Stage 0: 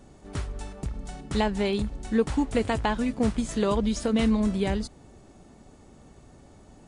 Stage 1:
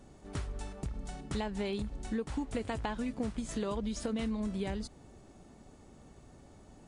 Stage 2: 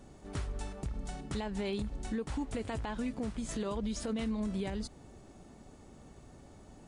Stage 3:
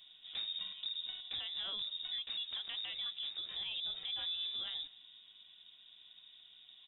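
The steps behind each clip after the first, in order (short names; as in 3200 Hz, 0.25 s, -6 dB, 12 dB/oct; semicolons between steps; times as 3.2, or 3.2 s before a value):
compressor 5:1, threshold -28 dBFS, peak gain reduction 10 dB; gain -4 dB
limiter -29 dBFS, peak gain reduction 7.5 dB; gain +1.5 dB
inverted band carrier 3700 Hz; outdoor echo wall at 32 m, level -21 dB; gain -6 dB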